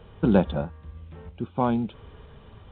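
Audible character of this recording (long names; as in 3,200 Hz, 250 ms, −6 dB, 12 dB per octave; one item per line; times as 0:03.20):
sample-and-hold tremolo 3.1 Hz, depth 65%
A-law companding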